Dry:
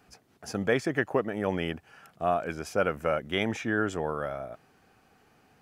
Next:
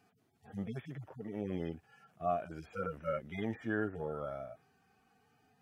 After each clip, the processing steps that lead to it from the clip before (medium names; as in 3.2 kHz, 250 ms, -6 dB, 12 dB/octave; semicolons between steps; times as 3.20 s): harmonic-percussive separation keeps harmonic; trim -6 dB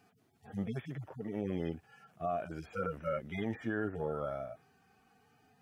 peak limiter -28 dBFS, peak gain reduction 6.5 dB; trim +3 dB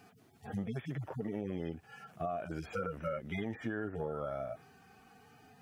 compression 4:1, threshold -43 dBFS, peak gain reduction 11 dB; trim +7.5 dB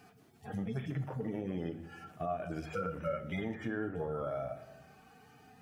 simulated room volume 320 m³, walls mixed, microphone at 0.46 m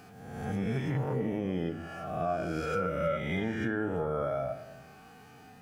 reverse spectral sustain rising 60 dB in 1.18 s; trim +3.5 dB